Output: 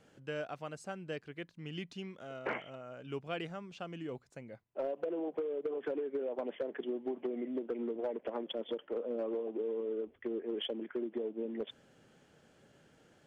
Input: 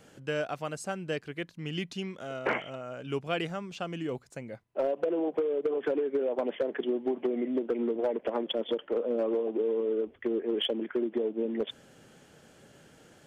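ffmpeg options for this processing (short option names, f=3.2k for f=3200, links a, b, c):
-af "highshelf=f=8.2k:g=-10.5,volume=-7.5dB"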